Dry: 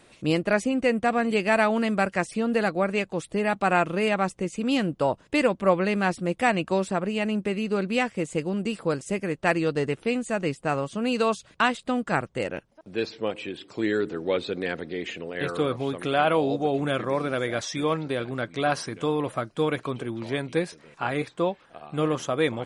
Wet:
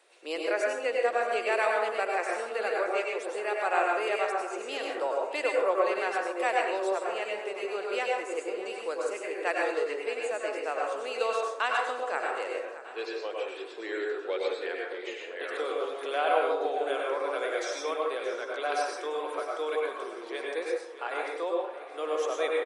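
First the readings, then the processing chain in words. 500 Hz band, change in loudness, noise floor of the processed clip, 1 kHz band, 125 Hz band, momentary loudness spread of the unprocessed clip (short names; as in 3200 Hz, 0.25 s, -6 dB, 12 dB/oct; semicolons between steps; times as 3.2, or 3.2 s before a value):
-3.0 dB, -4.5 dB, -42 dBFS, -2.5 dB, under -40 dB, 8 LU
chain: steep high-pass 390 Hz 36 dB/oct; feedback echo 0.623 s, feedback 52%, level -15 dB; plate-style reverb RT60 0.71 s, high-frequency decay 0.5×, pre-delay 85 ms, DRR -1.5 dB; gain -7 dB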